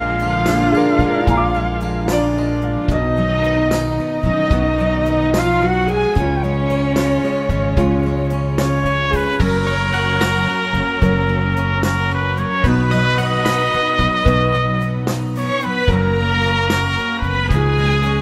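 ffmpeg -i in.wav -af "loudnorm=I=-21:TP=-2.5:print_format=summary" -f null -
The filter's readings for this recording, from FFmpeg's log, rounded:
Input Integrated:    -17.2 LUFS
Input True Peak:      -2.7 dBTP
Input LRA:             0.9 LU
Input Threshold:     -27.2 LUFS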